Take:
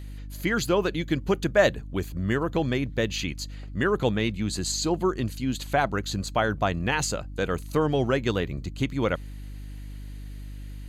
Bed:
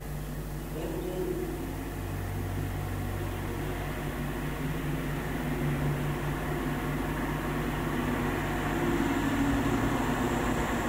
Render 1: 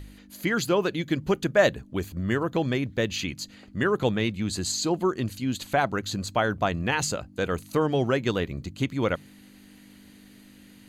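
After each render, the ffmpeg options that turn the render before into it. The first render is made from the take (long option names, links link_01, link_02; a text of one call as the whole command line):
ffmpeg -i in.wav -af "bandreject=frequency=50:width_type=h:width=4,bandreject=frequency=100:width_type=h:width=4,bandreject=frequency=150:width_type=h:width=4" out.wav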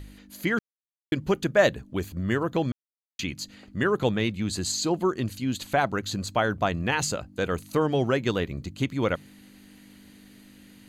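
ffmpeg -i in.wav -filter_complex "[0:a]asplit=5[link_01][link_02][link_03][link_04][link_05];[link_01]atrim=end=0.59,asetpts=PTS-STARTPTS,afade=type=out:start_time=0.586:duration=0.004:curve=hsin[link_06];[link_02]atrim=start=0.59:end=1.12,asetpts=PTS-STARTPTS,volume=0[link_07];[link_03]atrim=start=1.12:end=2.72,asetpts=PTS-STARTPTS,afade=type=in:duration=0.004:curve=hsin,afade=type=out:start_time=1.596:duration=0.004:curve=hsin[link_08];[link_04]atrim=start=2.72:end=3.19,asetpts=PTS-STARTPTS,volume=0[link_09];[link_05]atrim=start=3.19,asetpts=PTS-STARTPTS,afade=type=in:duration=0.004:curve=hsin[link_10];[link_06][link_07][link_08][link_09][link_10]concat=n=5:v=0:a=1" out.wav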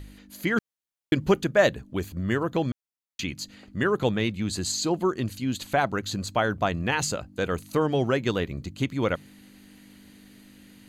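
ffmpeg -i in.wav -filter_complex "[0:a]asplit=3[link_01][link_02][link_03];[link_01]atrim=end=0.562[link_04];[link_02]atrim=start=0.558:end=1.422,asetpts=PTS-STARTPTS,volume=3.5dB[link_05];[link_03]atrim=start=1.418[link_06];[link_04][link_05]acrossfade=duration=0.004:curve1=hsin:curve2=hsin[link_07];[link_07][link_06]acrossfade=duration=0.004:curve1=hsin:curve2=hsin" out.wav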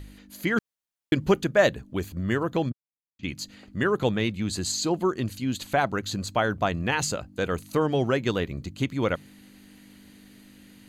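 ffmpeg -i in.wav -filter_complex "[0:a]asplit=3[link_01][link_02][link_03];[link_01]afade=type=out:start_time=2.68:duration=0.02[link_04];[link_02]bandpass=frequency=140:width_type=q:width=0.94,afade=type=in:start_time=2.68:duration=0.02,afade=type=out:start_time=3.23:duration=0.02[link_05];[link_03]afade=type=in:start_time=3.23:duration=0.02[link_06];[link_04][link_05][link_06]amix=inputs=3:normalize=0" out.wav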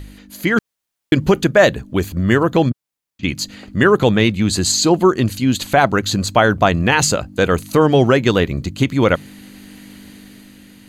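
ffmpeg -i in.wav -af "dynaudnorm=framelen=130:gausssize=11:maxgain=4dB,alimiter=level_in=8dB:limit=-1dB:release=50:level=0:latency=1" out.wav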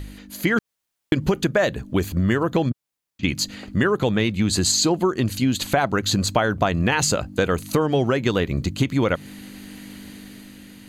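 ffmpeg -i in.wav -af "acompressor=threshold=-16dB:ratio=6" out.wav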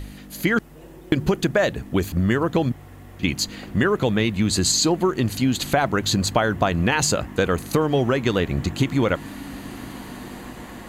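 ffmpeg -i in.wav -i bed.wav -filter_complex "[1:a]volume=-9.5dB[link_01];[0:a][link_01]amix=inputs=2:normalize=0" out.wav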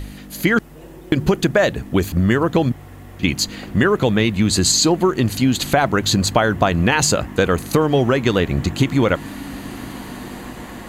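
ffmpeg -i in.wav -af "volume=4dB,alimiter=limit=-1dB:level=0:latency=1" out.wav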